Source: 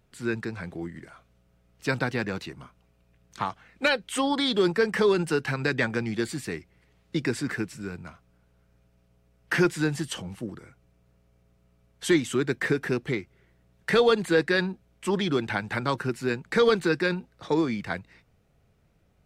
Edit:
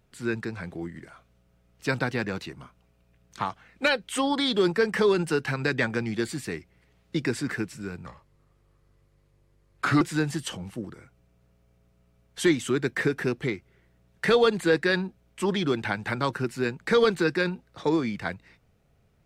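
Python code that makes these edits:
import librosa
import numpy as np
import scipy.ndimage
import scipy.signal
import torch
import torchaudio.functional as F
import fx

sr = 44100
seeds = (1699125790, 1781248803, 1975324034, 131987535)

y = fx.edit(x, sr, fx.speed_span(start_s=8.06, length_s=1.6, speed=0.82), tone=tone)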